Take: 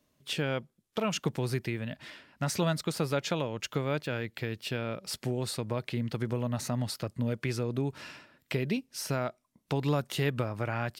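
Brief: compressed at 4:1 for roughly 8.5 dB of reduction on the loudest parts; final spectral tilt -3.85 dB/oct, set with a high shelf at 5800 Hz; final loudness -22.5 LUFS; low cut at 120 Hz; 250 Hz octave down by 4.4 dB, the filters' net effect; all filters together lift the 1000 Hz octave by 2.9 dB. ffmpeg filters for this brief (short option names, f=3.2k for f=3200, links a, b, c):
-af "highpass=120,equalizer=f=250:t=o:g=-5.5,equalizer=f=1k:t=o:g=4,highshelf=f=5.8k:g=4.5,acompressor=threshold=-35dB:ratio=4,volume=17dB"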